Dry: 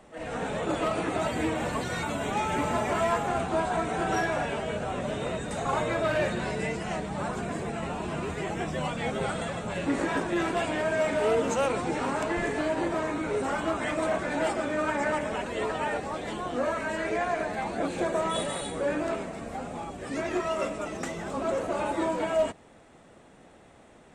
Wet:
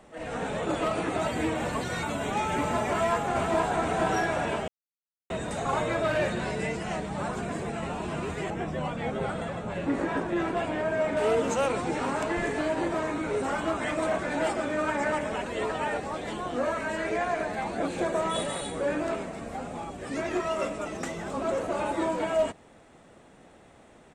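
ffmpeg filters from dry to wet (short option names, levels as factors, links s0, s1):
-filter_complex "[0:a]asplit=2[s0][s1];[s1]afade=t=in:st=2.88:d=0.01,afade=t=out:st=3.63:d=0.01,aecho=0:1:470|940|1410|1880|2350|2820|3290|3760|4230:0.595662|0.357397|0.214438|0.128663|0.0771978|0.0463187|0.0277912|0.0166747|0.0100048[s2];[s0][s2]amix=inputs=2:normalize=0,asettb=1/sr,asplit=3[s3][s4][s5];[s3]atrim=end=8.504[s6];[s4]atrim=start=8.5:end=11.17,asetpts=PTS-STARTPTS,afade=t=in:d=0.004:c=qsin,afade=t=out:st=2.666:d=0.004:c=qsin,highshelf=f=2800:g=-10[s7];[s5]atrim=start=11.166[s8];[s6][s7]acrossfade=d=0.004:c1=hsin:c2=qsin[s9];[s9][s8]acrossfade=d=0.004:c1=qsin:c2=hsin,asplit=3[s10][s11][s12];[s10]atrim=end=4.68,asetpts=PTS-STARTPTS,afade=t=out:st=4.676:d=0.004:c=hsin[s13];[s11]atrim=start=4.68:end=5.3,asetpts=PTS-STARTPTS,volume=0[s14];[s12]atrim=start=5.3,asetpts=PTS-STARTPTS,afade=t=in:d=0.004:c=hsin[s15];[s13][s14][s15]concat=n=3:v=0:a=1"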